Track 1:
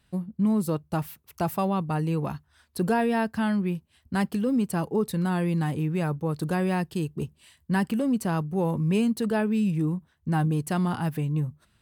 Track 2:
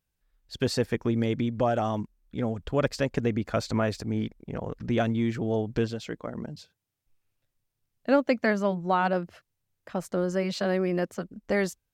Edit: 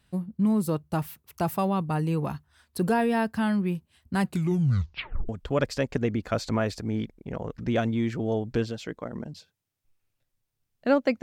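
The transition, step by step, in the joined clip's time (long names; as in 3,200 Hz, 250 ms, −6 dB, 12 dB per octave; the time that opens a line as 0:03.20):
track 1
0:04.20: tape stop 1.09 s
0:05.29: continue with track 2 from 0:02.51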